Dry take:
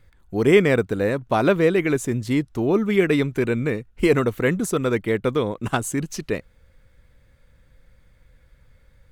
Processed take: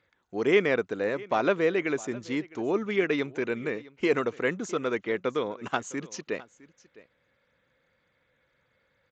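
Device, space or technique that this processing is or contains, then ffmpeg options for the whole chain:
Bluetooth headset: -af "highpass=f=230:p=1,highpass=f=270:p=1,equalizer=f=4.4k:w=2.2:g=-3.5,aecho=1:1:659:0.0944,aresample=16000,aresample=44100,volume=-4dB" -ar 16000 -c:a sbc -b:a 64k

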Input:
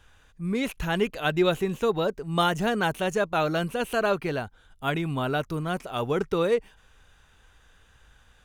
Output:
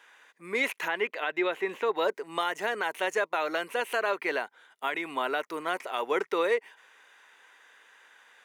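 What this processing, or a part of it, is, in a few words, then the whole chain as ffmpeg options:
laptop speaker: -filter_complex "[0:a]highpass=f=340:w=0.5412,highpass=f=340:w=1.3066,equalizer=f=970:t=o:w=0.3:g=6.5,equalizer=f=2k:t=o:w=0.56:g=11.5,alimiter=limit=-17dB:level=0:latency=1:release=252,asettb=1/sr,asplit=3[a][b][c];[a]atrim=end=0.884[d];[b]atrim=start=0.88:end=1.95,asetpts=PTS-STARTPTS,afade=t=in:d=0.004:c=qsin,afade=t=out:st=1.066:d=0.004:c=qsin,acrossover=split=3800[e][f];[f]acompressor=threshold=-59dB:ratio=4:attack=1:release=60[g];[e][g]amix=inputs=2:normalize=0[h];[c]atrim=start=1.946[i];[d][h]acrossfade=d=0.004:c1=hsin:c2=qsin[j];[j][i]acrossfade=d=0.004:c1=qsin:c2=hsin"

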